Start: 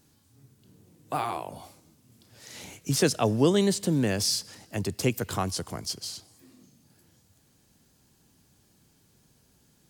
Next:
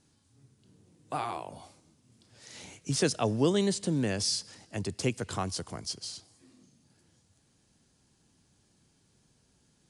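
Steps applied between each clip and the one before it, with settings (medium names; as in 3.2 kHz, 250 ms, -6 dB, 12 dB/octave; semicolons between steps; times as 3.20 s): elliptic low-pass 10 kHz, stop band 40 dB; trim -3 dB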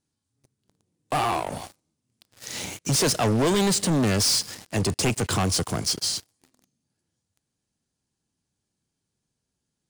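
treble shelf 10 kHz +5 dB; waveshaping leveller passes 5; trim -4 dB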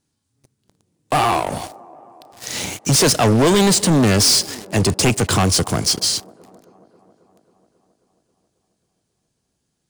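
feedback echo behind a band-pass 270 ms, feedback 69%, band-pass 480 Hz, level -20 dB; trim +7.5 dB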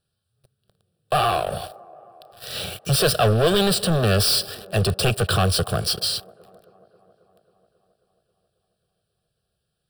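static phaser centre 1.4 kHz, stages 8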